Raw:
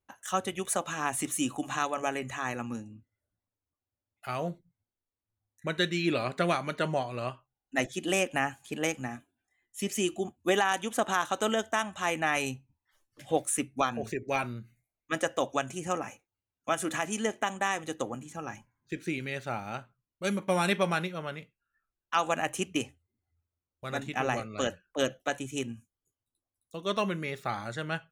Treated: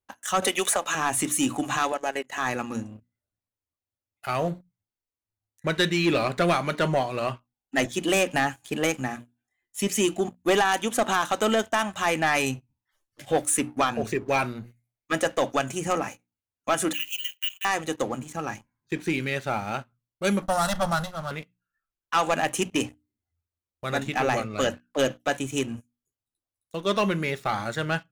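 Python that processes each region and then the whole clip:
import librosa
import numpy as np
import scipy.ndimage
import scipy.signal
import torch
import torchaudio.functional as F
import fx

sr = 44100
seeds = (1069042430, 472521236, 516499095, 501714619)

y = fx.chain(x, sr, fx.highpass(hz=410.0, slope=12),
    fx.band_squash(depth_pct=100), at=(0.42, 0.95))
y = fx.chain(y, sr, fx.highpass(hz=310.0, slope=12),
    fx.notch_comb(f0_hz=1200.0),
    fx.transient(attack_db=-8, sustain_db=-12), at=(1.92, 2.38))
y = fx.chain(y, sr, fx.ladder_highpass(hz=2700.0, resonance_pct=85),
    fx.high_shelf(hz=12000.0, db=5.5),
    fx.resample_bad(factor=2, down='none', up='zero_stuff'), at=(16.93, 17.65))
y = fx.chain(y, sr, fx.lower_of_two(delay_ms=1.5),
    fx.fixed_phaser(hz=980.0, stages=4), at=(20.42, 21.31))
y = fx.hum_notches(y, sr, base_hz=60, count=5)
y = fx.leveller(y, sr, passes=2)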